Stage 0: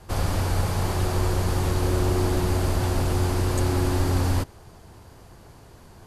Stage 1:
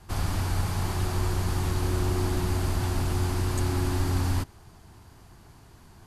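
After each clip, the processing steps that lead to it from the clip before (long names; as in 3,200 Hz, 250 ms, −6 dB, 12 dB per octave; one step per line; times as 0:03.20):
parametric band 520 Hz −9.5 dB 0.59 octaves
level −3 dB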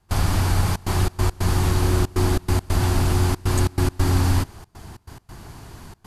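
in parallel at +1 dB: downward compressor, threshold −35 dBFS, peak gain reduction 13.5 dB
on the sum: gate pattern ".xxxxxx.xx.x" 139 BPM −24 dB
level +5 dB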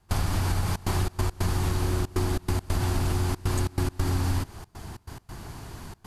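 downward compressor, threshold −22 dBFS, peak gain reduction 8.5 dB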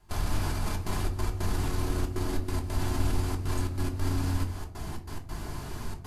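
brickwall limiter −24 dBFS, peak gain reduction 11 dB
convolution reverb RT60 0.50 s, pre-delay 3 ms, DRR 2 dB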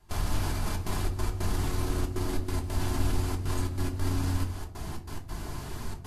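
Ogg Vorbis 48 kbit/s 44,100 Hz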